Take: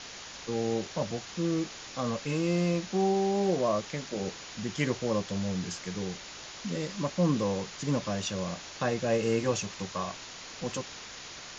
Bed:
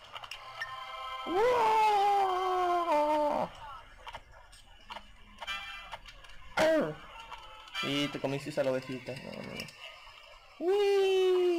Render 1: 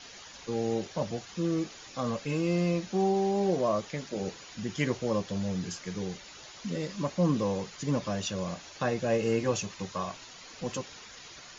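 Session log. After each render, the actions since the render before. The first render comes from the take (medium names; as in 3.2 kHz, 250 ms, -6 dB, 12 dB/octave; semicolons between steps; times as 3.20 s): noise reduction 9 dB, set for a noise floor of -45 dBFS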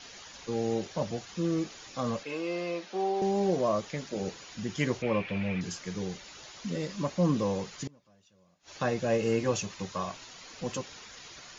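2.23–3.22 s: three-band isolator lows -23 dB, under 320 Hz, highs -19 dB, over 5.8 kHz; 5.02–5.61 s: resonant low-pass 2.4 kHz, resonance Q 8.9; 7.87–8.76 s: inverted gate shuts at -30 dBFS, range -31 dB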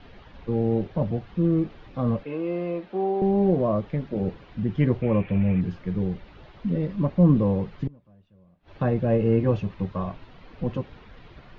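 low-pass 3.7 kHz 24 dB/octave; tilt EQ -4 dB/octave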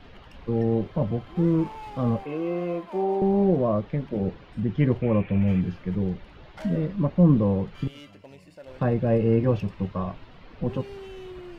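add bed -14.5 dB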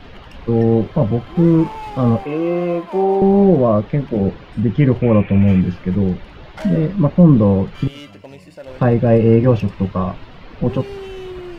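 trim +9.5 dB; peak limiter -2 dBFS, peak gain reduction 2.5 dB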